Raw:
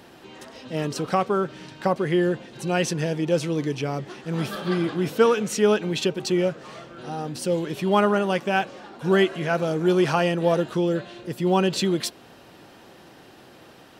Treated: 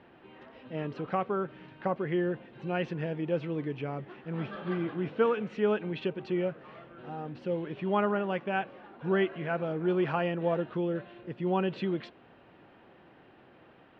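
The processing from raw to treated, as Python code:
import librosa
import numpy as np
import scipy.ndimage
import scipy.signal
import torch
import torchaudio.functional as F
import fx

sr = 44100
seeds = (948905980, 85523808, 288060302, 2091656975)

y = scipy.signal.sosfilt(scipy.signal.butter(4, 2800.0, 'lowpass', fs=sr, output='sos'), x)
y = y * 10.0 ** (-8.0 / 20.0)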